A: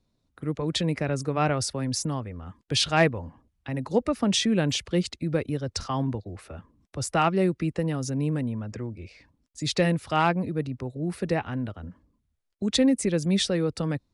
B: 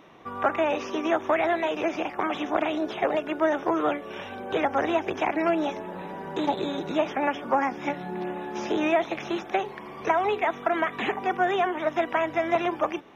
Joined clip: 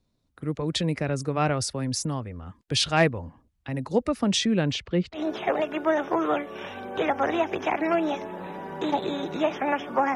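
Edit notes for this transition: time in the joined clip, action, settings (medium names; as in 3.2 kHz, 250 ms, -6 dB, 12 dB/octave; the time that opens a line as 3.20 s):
A
4.31–5.22 s: low-pass 9.7 kHz -> 1.7 kHz
5.17 s: go over to B from 2.72 s, crossfade 0.10 s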